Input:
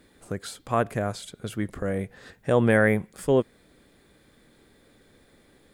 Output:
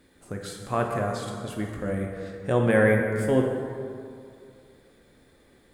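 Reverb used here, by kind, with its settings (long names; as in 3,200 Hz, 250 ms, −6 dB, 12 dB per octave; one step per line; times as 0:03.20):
dense smooth reverb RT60 2.4 s, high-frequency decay 0.5×, DRR 1 dB
level −3 dB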